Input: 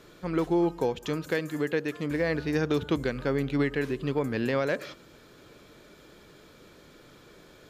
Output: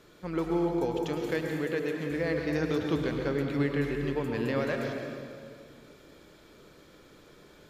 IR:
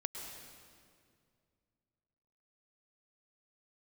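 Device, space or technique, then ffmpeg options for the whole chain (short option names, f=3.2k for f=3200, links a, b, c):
stairwell: -filter_complex "[1:a]atrim=start_sample=2205[a];[0:a][a]afir=irnorm=-1:irlink=0,volume=-2dB"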